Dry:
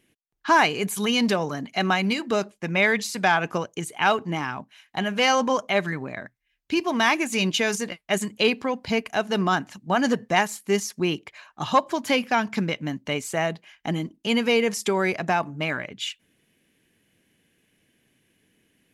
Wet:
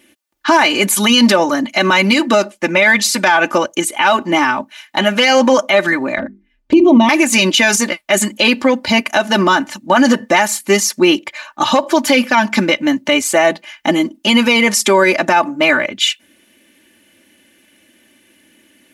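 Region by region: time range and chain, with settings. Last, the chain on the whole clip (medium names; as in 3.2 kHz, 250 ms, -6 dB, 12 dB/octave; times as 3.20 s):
6.18–7.09 s: tilt EQ -4.5 dB/octave + hum notches 50/100/150/200/250/300/350/400 Hz + touch-sensitive flanger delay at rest 9 ms, full sweep at -18.5 dBFS
whole clip: high-pass 250 Hz 6 dB/octave; comb 3.4 ms, depth 88%; loudness maximiser +14.5 dB; trim -1 dB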